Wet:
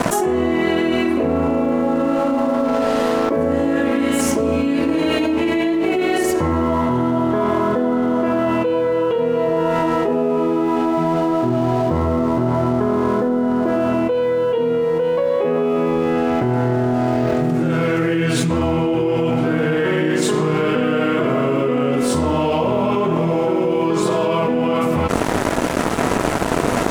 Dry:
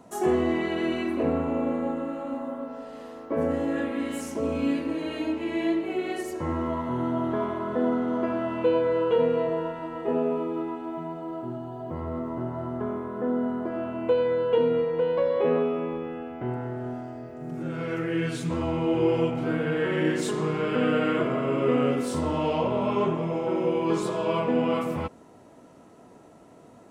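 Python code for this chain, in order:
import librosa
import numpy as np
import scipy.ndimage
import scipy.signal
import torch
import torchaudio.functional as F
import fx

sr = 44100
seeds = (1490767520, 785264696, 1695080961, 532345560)

y = np.sign(x) * np.maximum(np.abs(x) - 10.0 ** (-52.0 / 20.0), 0.0)
y = fx.env_flatten(y, sr, amount_pct=100)
y = F.gain(torch.from_numpy(y), 1.0).numpy()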